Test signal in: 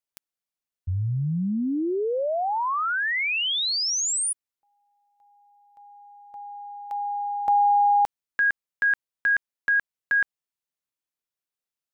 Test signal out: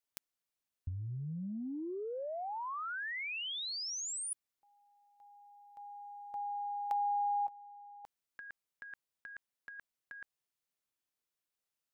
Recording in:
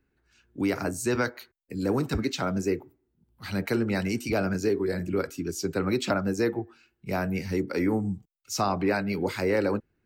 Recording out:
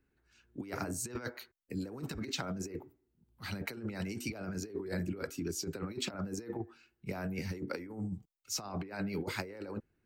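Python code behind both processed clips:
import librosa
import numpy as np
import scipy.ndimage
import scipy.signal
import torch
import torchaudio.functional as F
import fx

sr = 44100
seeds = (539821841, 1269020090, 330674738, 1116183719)

y = fx.over_compress(x, sr, threshold_db=-30.0, ratio=-0.5)
y = y * librosa.db_to_amplitude(-7.5)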